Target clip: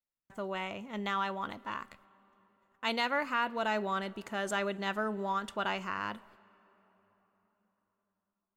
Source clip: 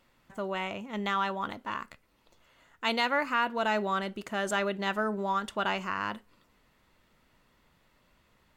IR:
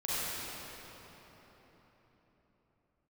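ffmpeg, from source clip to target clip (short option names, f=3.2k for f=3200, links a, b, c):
-filter_complex "[0:a]agate=range=-32dB:threshold=-58dB:ratio=16:detection=peak,asplit=2[a][b];[1:a]atrim=start_sample=2205,adelay=68[c];[b][c]afir=irnorm=-1:irlink=0,volume=-31.5dB[d];[a][d]amix=inputs=2:normalize=0,volume=-3.5dB"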